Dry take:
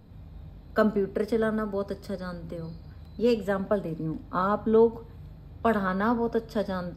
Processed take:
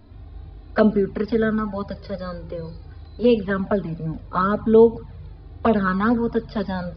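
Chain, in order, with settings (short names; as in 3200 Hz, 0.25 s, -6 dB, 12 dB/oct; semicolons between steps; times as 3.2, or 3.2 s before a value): envelope flanger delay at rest 3.2 ms, full sweep at -18.5 dBFS; downsampling 11025 Hz; gain +8 dB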